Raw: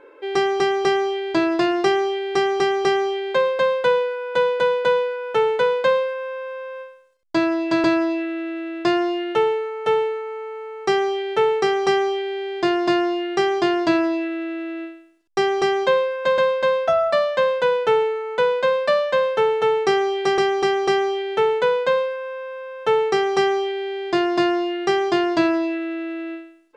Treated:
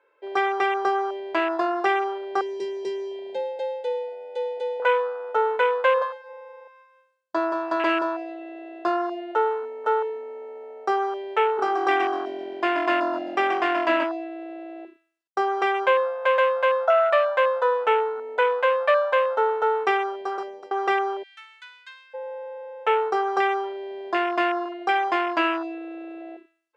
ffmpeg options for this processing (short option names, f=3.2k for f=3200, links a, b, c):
-filter_complex "[0:a]asettb=1/sr,asplit=3[a][b][c];[a]atrim=end=2.414[d];[b]atrim=start=2.41:end=4.8,asetpts=PTS-STARTPTS,afade=t=in:d=0.004:c=qsin,afade=t=out:st=2.386:d=0.004:c=qsin,asuperstop=centerf=1000:order=4:qfactor=0.55[e];[c]atrim=start=4.796[f];[d][e]acrossfade=d=0.004:c1=hsin:c2=qsin[g];[g][f]acrossfade=d=0.004:c1=qsin:c2=hsin,asplit=3[h][i][j];[h]afade=t=out:st=5.94:d=0.02[k];[i]aecho=1:1:175:0.501,afade=t=in:st=5.94:d=0.02,afade=t=out:st=8.89:d=0.02[l];[j]afade=t=in:st=8.89:d=0.02[m];[k][l][m]amix=inputs=3:normalize=0,asplit=3[n][o][p];[n]afade=t=out:st=11.57:d=0.02[q];[o]asplit=7[r][s][t][u][v][w][x];[s]adelay=130,afreqshift=-44,volume=-7dB[y];[t]adelay=260,afreqshift=-88,volume=-12.5dB[z];[u]adelay=390,afreqshift=-132,volume=-18dB[aa];[v]adelay=520,afreqshift=-176,volume=-23.5dB[ab];[w]adelay=650,afreqshift=-220,volume=-29.1dB[ac];[x]adelay=780,afreqshift=-264,volume=-34.6dB[ad];[r][y][z][aa][ab][ac][ad]amix=inputs=7:normalize=0,afade=t=in:st=11.57:d=0.02,afade=t=out:st=14.03:d=0.02[ae];[p]afade=t=in:st=14.03:d=0.02[af];[q][ae][af]amix=inputs=3:normalize=0,asplit=3[ag][ah][ai];[ag]afade=t=out:st=21.22:d=0.02[aj];[ah]highpass=f=1.5k:w=0.5412,highpass=f=1.5k:w=1.3066,afade=t=in:st=21.22:d=0.02,afade=t=out:st=22.13:d=0.02[ak];[ai]afade=t=in:st=22.13:d=0.02[al];[aj][ak][al]amix=inputs=3:normalize=0,asettb=1/sr,asplit=3[am][an][ao];[am]atrim=end=24.654[ap];[an]atrim=start=24.65:end=26.21,asetpts=PTS-STARTPTS,afade=t=in:d=0.004:c=qsin,afade=t=out:st=1.556:d=0.004:c=qsin,aecho=1:1:3.8:0.44,atrim=end_sample=68796[aq];[ao]atrim=start=26.206[ar];[ap][aq]acrossfade=d=0.004:c1=hsin:c2=qsin[as];[as][ar]acrossfade=d=0.004:c1=qsin:c2=hsin,asplit=2[at][au];[at]atrim=end=20.71,asetpts=PTS-STARTPTS,afade=t=out:st=19.89:d=0.82:silence=0.1[av];[au]atrim=start=20.71,asetpts=PTS-STARTPTS,afade=t=in:d=0.004:c=hsin:silence=0.1[aw];[av][aw]concat=n=2:v=0:a=1,afwtdn=0.0562,highpass=660,volume=2.5dB"